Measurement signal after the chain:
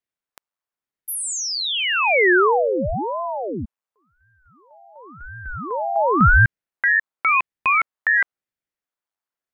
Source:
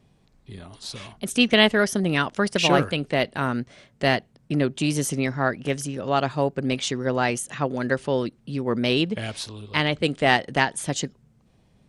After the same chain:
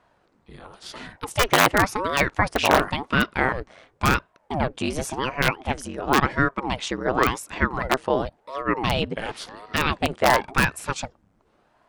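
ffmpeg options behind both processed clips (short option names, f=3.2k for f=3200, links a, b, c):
-af "aeval=exprs='(mod(2.99*val(0)+1,2)-1)/2.99':c=same,equalizer=f=1k:t=o:w=2.3:g=13,aeval=exprs='val(0)*sin(2*PI*450*n/s+450*0.9/0.93*sin(2*PI*0.93*n/s))':c=same,volume=-3.5dB"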